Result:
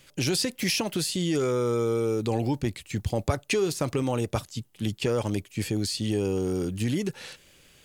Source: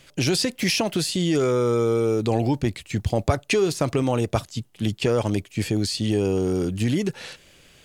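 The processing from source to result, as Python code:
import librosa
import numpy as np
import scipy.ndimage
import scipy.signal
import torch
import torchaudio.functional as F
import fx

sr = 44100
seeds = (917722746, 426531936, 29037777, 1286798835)

y = fx.high_shelf(x, sr, hz=10000.0, db=8.0)
y = fx.notch(y, sr, hz=670.0, q=12.0)
y = y * librosa.db_to_amplitude(-4.5)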